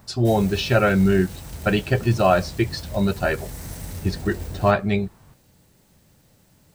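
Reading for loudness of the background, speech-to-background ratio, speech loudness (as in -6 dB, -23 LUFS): -36.0 LUFS, 14.0 dB, -22.0 LUFS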